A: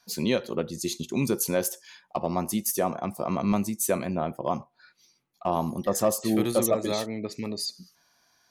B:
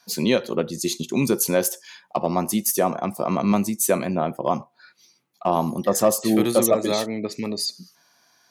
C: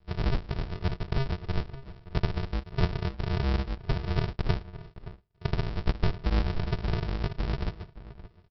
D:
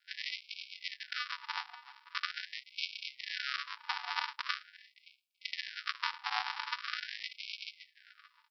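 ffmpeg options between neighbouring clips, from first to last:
-af "highpass=130,volume=5.5dB"
-filter_complex "[0:a]acompressor=threshold=-26dB:ratio=2.5,aresample=11025,acrusher=samples=41:mix=1:aa=0.000001,aresample=44100,asplit=2[a][b];[b]adelay=571.4,volume=-15dB,highshelf=f=4k:g=-12.9[c];[a][c]amix=inputs=2:normalize=0"
-af "afftfilt=real='re*gte(b*sr/1024,730*pow(2200/730,0.5+0.5*sin(2*PI*0.43*pts/sr)))':imag='im*gte(b*sr/1024,730*pow(2200/730,0.5+0.5*sin(2*PI*0.43*pts/sr)))':win_size=1024:overlap=0.75,volume=4.5dB"

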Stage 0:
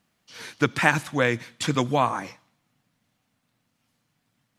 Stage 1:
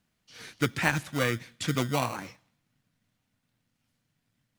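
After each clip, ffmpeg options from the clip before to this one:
-filter_complex "[0:a]lowshelf=f=89:g=11,acrossover=split=1000[a][b];[a]acrusher=samples=26:mix=1:aa=0.000001[c];[c][b]amix=inputs=2:normalize=0,volume=-5.5dB"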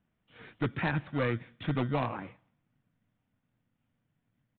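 -af "lowpass=f=1.3k:p=1,aresample=8000,asoftclip=type=hard:threshold=-23dB,aresample=44100"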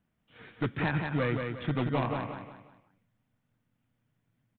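-af "aecho=1:1:179|358|537|716:0.562|0.202|0.0729|0.0262"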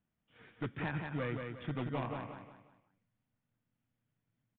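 -af "aresample=8000,aresample=44100,volume=-8dB"

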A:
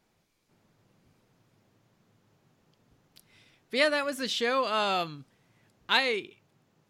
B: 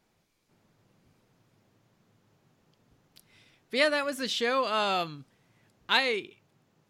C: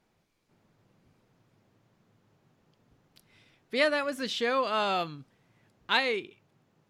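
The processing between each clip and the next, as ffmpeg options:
-af anull
-af "highshelf=f=4.2k:g=-6"

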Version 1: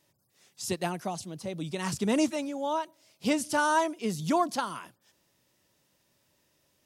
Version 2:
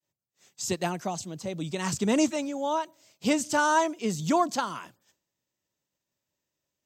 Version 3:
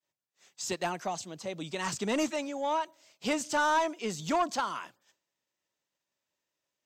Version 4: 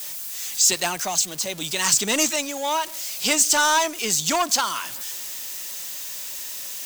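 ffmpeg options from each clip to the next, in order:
-af "agate=range=-33dB:threshold=-59dB:ratio=3:detection=peak,superequalizer=15b=1.58:16b=0.282,volume=2dB"
-filter_complex "[0:a]asplit=2[a][b];[b]highpass=f=720:p=1,volume=15dB,asoftclip=type=tanh:threshold=-11dB[c];[a][c]amix=inputs=2:normalize=0,lowpass=f=4k:p=1,volume=-6dB,volume=-7.5dB"
-af "aeval=exprs='val(0)+0.5*0.00562*sgn(val(0))':c=same,crystalizer=i=7.5:c=0,volume=2dB"

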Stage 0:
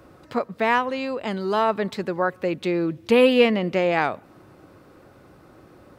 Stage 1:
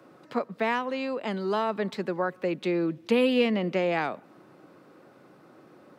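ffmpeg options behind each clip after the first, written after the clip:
-filter_complex "[0:a]highpass=f=150:w=0.5412,highpass=f=150:w=1.3066,highshelf=f=7k:g=-6,acrossover=split=320|3000[a][b][c];[b]acompressor=threshold=-21dB:ratio=6[d];[a][d][c]amix=inputs=3:normalize=0,volume=-3dB"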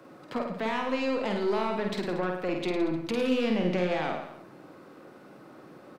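-af "alimiter=limit=-22dB:level=0:latency=1:release=93,aeval=exprs='(tanh(20*val(0)+0.25)-tanh(0.25))/20':c=same,aecho=1:1:50|105|165.5|232|305.3:0.631|0.398|0.251|0.158|0.1,volume=2.5dB"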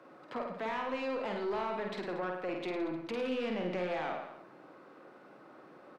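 -filter_complex "[0:a]asplit=2[a][b];[b]highpass=f=720:p=1,volume=14dB,asoftclip=type=tanh:threshold=-15.5dB[c];[a][c]amix=inputs=2:normalize=0,lowpass=f=1.7k:p=1,volume=-6dB,volume=-9dB"

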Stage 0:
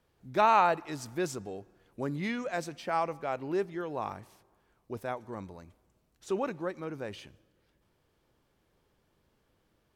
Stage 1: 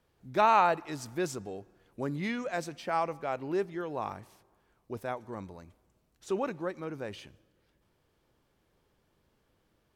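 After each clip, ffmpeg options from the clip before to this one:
-af anull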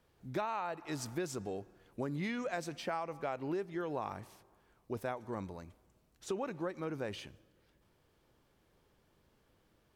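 -af "acompressor=threshold=-34dB:ratio=16,volume=1dB"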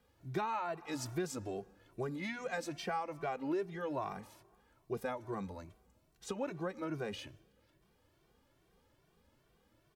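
-filter_complex "[0:a]asplit=2[a][b];[b]adelay=2.1,afreqshift=2.4[c];[a][c]amix=inputs=2:normalize=1,volume=3dB"

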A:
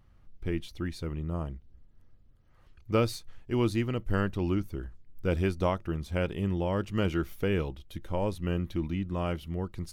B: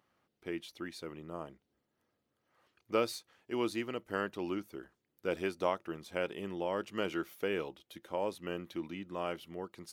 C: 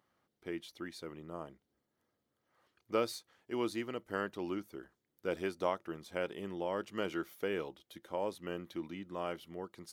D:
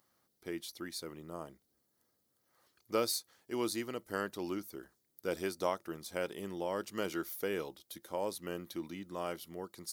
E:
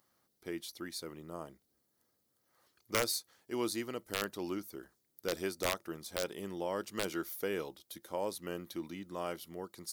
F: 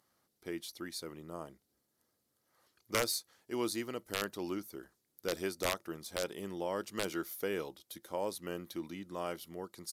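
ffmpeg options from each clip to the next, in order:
-af "highpass=340,volume=-2.5dB"
-af "equalizer=f=2.6k:w=6.2:g=-5,volume=-1.5dB"
-af "aexciter=amount=3.5:drive=4:freq=4.1k"
-af "aeval=exprs='(mod(12.6*val(0)+1,2)-1)/12.6':c=same"
-af "aresample=32000,aresample=44100"

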